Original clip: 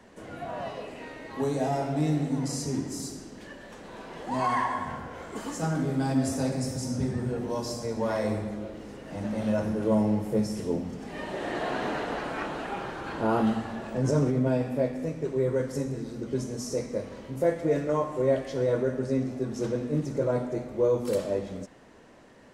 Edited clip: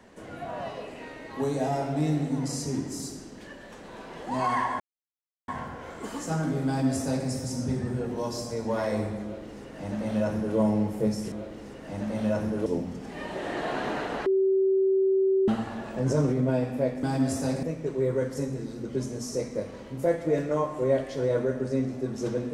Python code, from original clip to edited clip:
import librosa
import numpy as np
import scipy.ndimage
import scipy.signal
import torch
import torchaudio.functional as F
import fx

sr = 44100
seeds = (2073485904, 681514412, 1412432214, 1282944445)

y = fx.edit(x, sr, fx.insert_silence(at_s=4.8, length_s=0.68),
    fx.duplicate(start_s=5.99, length_s=0.6, to_s=15.01),
    fx.duplicate(start_s=8.55, length_s=1.34, to_s=10.64),
    fx.bleep(start_s=12.24, length_s=1.22, hz=384.0, db=-19.5), tone=tone)